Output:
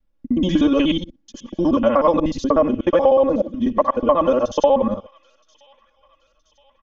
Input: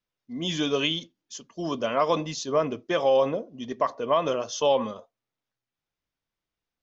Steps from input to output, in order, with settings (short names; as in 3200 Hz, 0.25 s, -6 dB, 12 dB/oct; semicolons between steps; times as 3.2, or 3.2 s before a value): local time reversal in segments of 61 ms; tilt -4 dB/oct; comb 3.6 ms, depth 93%; on a send: thin delay 0.97 s, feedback 54%, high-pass 2100 Hz, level -21 dB; on the sum: dynamic EQ 960 Hz, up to +5 dB, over -30 dBFS, Q 0.96; compressor 6:1, threshold -15 dBFS, peak gain reduction 8.5 dB; gain +3.5 dB